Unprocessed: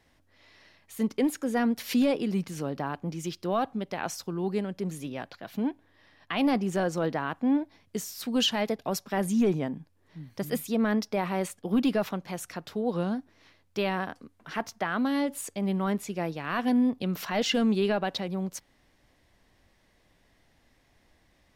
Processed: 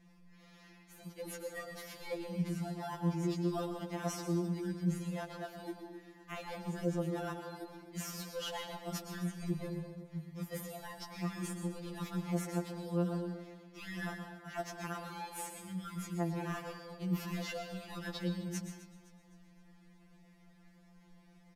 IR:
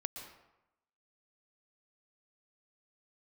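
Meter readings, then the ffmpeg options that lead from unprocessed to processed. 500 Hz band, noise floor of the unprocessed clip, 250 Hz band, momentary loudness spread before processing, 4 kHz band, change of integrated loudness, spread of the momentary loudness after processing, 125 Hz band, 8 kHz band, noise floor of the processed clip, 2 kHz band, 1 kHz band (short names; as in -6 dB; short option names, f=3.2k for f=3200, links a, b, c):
-11.0 dB, -66 dBFS, -11.0 dB, 12 LU, -13.0 dB, -10.5 dB, 11 LU, -2.0 dB, -7.5 dB, -62 dBFS, -10.5 dB, -11.0 dB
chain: -filter_complex "[0:a]bandreject=f=560:w=12,areverse,acompressor=threshold=-33dB:ratio=16,areverse,aeval=exprs='val(0)+0.00158*(sin(2*PI*60*n/s)+sin(2*PI*2*60*n/s)/2+sin(2*PI*3*60*n/s)/3+sin(2*PI*4*60*n/s)/4+sin(2*PI*5*60*n/s)/5)':c=same,asplit=2[a][b];[b]acrusher=samples=10:mix=1:aa=0.000001,volume=-4.5dB[c];[a][c]amix=inputs=2:normalize=0,aecho=1:1:257|514|771|1028:0.158|0.0682|0.0293|0.0126[d];[1:a]atrim=start_sample=2205[e];[d][e]afir=irnorm=-1:irlink=0,aresample=32000,aresample=44100,afftfilt=real='re*2.83*eq(mod(b,8),0)':imag='im*2.83*eq(mod(b,8),0)':win_size=2048:overlap=0.75,volume=-1.5dB"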